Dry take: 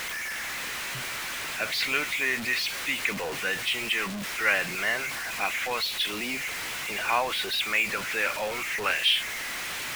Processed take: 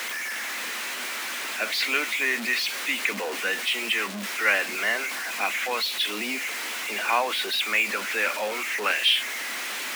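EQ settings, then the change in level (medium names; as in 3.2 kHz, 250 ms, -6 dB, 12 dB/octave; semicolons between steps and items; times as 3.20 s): steep high-pass 200 Hz 96 dB/octave; +2.0 dB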